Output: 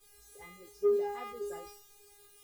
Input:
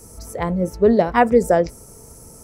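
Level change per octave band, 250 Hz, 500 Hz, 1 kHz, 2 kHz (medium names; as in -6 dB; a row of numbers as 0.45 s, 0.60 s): -27.5 dB, -15.5 dB, -22.5 dB, -24.0 dB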